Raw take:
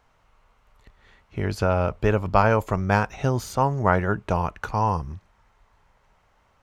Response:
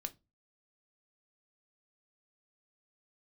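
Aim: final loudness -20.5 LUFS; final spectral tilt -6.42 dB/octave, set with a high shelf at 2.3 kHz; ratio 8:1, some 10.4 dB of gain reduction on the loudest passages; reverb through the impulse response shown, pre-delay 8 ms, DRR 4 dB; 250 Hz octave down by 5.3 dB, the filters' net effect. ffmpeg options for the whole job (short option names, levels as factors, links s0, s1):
-filter_complex "[0:a]equalizer=f=250:t=o:g=-8,highshelf=f=2300:g=-5,acompressor=threshold=0.0562:ratio=8,asplit=2[s0][s1];[1:a]atrim=start_sample=2205,adelay=8[s2];[s1][s2]afir=irnorm=-1:irlink=0,volume=0.794[s3];[s0][s3]amix=inputs=2:normalize=0,volume=2.99"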